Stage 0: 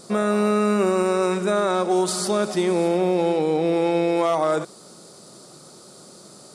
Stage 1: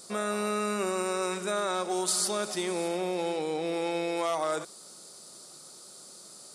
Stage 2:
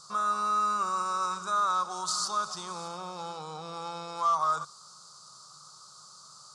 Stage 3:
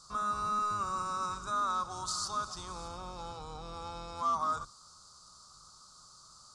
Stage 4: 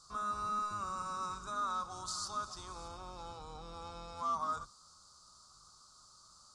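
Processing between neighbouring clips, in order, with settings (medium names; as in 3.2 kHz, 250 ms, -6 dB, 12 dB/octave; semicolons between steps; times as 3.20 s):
tilt EQ +2.5 dB/octave; trim -7.5 dB
FFT filter 150 Hz 0 dB, 260 Hz -23 dB, 710 Hz -10 dB, 1.2 kHz +10 dB, 2 kHz -20 dB, 4.6 kHz -1 dB, 6.5 kHz -1 dB, 11 kHz -19 dB; trim +1.5 dB
octave divider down 2 oct, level +4 dB; trim -5 dB
flange 0.35 Hz, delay 2.6 ms, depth 2 ms, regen -73%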